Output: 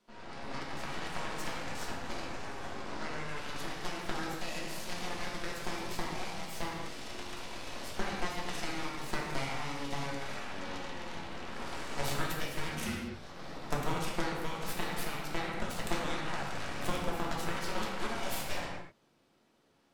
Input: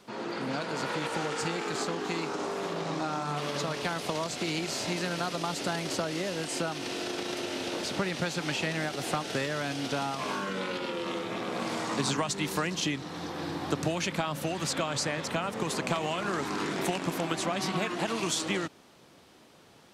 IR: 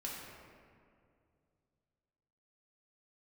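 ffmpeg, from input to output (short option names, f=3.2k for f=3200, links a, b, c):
-filter_complex "[0:a]aeval=exprs='0.188*(cos(1*acos(clip(val(0)/0.188,-1,1)))-cos(1*PI/2))+0.075*(cos(3*acos(clip(val(0)/0.188,-1,1)))-cos(3*PI/2))+0.0473*(cos(4*acos(clip(val(0)/0.188,-1,1)))-cos(4*PI/2))':c=same,asettb=1/sr,asplit=3[a][b][c];[a]atrim=end=12.694[d];[b]atrim=start=12.69:end=13.15,asetpts=PTS-STARTPTS,afade=t=in:d=0.004:c=qsin,afade=t=out:st=0.456:d=0.004:c=qsin,afreqshift=-240[e];[c]atrim=start=13.146[f];[d][e]acrossfade=d=0.004:c1=hsin:c2=qsin[g];[g][f]acrossfade=d=0.004:c1=qsin:c2=hsin[h];[1:a]atrim=start_sample=2205,afade=t=out:st=0.3:d=0.01,atrim=end_sample=13671[i];[h][i]afir=irnorm=-1:irlink=0,volume=1dB"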